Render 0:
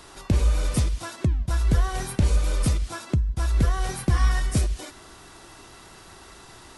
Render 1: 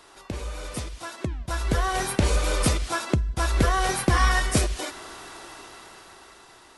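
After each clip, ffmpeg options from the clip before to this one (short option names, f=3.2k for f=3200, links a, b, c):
-af "bass=f=250:g=-11,treble=f=4k:g=-3,dynaudnorm=f=290:g=11:m=13.5dB,volume=-3.5dB"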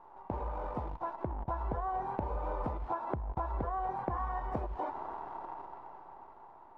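-af "acrusher=bits=7:dc=4:mix=0:aa=0.000001,lowpass=f=890:t=q:w=6.2,acompressor=threshold=-27dB:ratio=12,volume=-4.5dB"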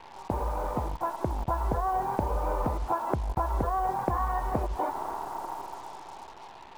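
-af "acrusher=bits=8:mix=0:aa=0.5,volume=7dB"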